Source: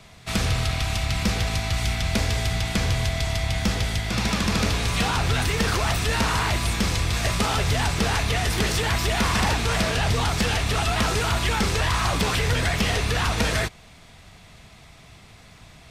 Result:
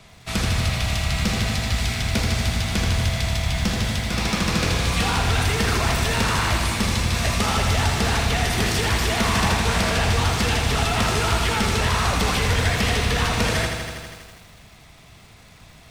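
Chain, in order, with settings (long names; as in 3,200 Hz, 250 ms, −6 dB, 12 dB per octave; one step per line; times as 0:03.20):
feedback echo at a low word length 81 ms, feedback 80%, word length 8 bits, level −6 dB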